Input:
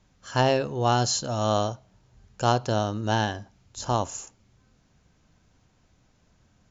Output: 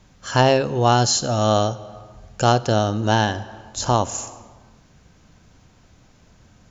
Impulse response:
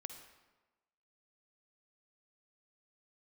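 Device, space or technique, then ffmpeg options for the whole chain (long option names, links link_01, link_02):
compressed reverb return: -filter_complex "[0:a]asplit=2[link_01][link_02];[1:a]atrim=start_sample=2205[link_03];[link_02][link_03]afir=irnorm=-1:irlink=0,acompressor=threshold=-38dB:ratio=5,volume=4dB[link_04];[link_01][link_04]amix=inputs=2:normalize=0,asettb=1/sr,asplit=3[link_05][link_06][link_07];[link_05]atrim=end=1.034[link_08];[link_06]atrim=start=1.03:end=3.02,asetpts=PTS-STARTPTS,afade=type=in:duration=0.004:curve=qsin,afade=type=out:start_time=1.986:duration=0.004:curve=qsin,bandreject=frequency=1000:width=7.3[link_09];[link_07]atrim=start=3.016[link_10];[link_08][link_09]acrossfade=duration=0.004:curve1=hsin:curve2=qsin[link_11];[link_11][link_10]acrossfade=duration=0.004:curve1=qsin:curve2=hsin,volume=4.5dB"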